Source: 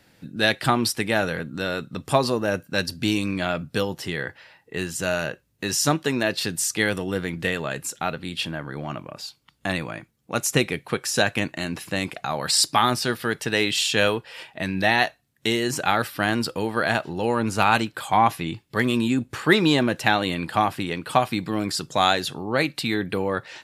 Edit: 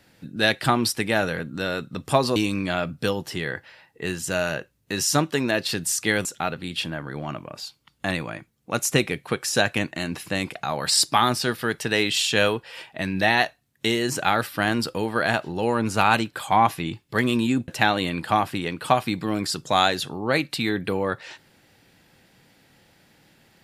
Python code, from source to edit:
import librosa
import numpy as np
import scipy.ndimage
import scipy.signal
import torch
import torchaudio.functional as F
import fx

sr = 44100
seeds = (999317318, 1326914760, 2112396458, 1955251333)

y = fx.edit(x, sr, fx.cut(start_s=2.36, length_s=0.72),
    fx.cut(start_s=6.97, length_s=0.89),
    fx.cut(start_s=19.29, length_s=0.64), tone=tone)